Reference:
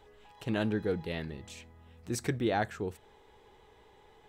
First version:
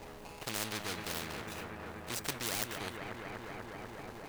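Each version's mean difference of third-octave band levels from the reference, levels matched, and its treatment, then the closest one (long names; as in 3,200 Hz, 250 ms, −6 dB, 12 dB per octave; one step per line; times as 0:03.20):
17.5 dB: running median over 41 samples
high-shelf EQ 6,400 Hz +7.5 dB
delay with a low-pass on its return 244 ms, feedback 74%, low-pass 2,000 Hz, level −12 dB
every bin compressed towards the loudest bin 4 to 1
level +6 dB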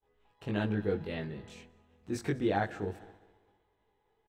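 6.0 dB: high-shelf EQ 4,600 Hz −11 dB
on a send: echo machine with several playback heads 66 ms, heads first and third, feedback 68%, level −23 dB
on the sum: downward expander −48 dBFS
double-tracking delay 20 ms −2 dB
level −2 dB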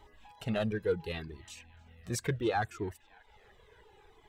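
3.5 dB: reverb reduction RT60 0.84 s
in parallel at −8.5 dB: hard clipping −28.5 dBFS, distortion −12 dB
on the sum: feedback echo with a band-pass in the loop 292 ms, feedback 79%, band-pass 2,200 Hz, level −22.5 dB
flanger whose copies keep moving one way falling 0.7 Hz
level +2.5 dB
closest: third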